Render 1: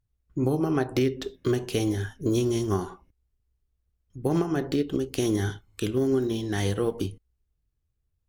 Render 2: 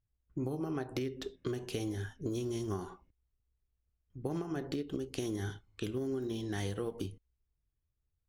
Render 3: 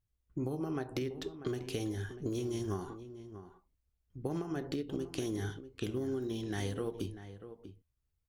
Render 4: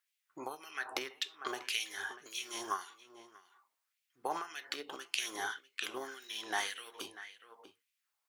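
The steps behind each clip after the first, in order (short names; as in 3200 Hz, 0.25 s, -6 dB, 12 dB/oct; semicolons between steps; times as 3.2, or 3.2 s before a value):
low-pass opened by the level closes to 2900 Hz, open at -25 dBFS; compressor, threshold -26 dBFS, peak gain reduction 7 dB; gain -6.5 dB
outdoor echo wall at 110 m, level -12 dB
LFO high-pass sine 1.8 Hz 860–2500 Hz; gain +6.5 dB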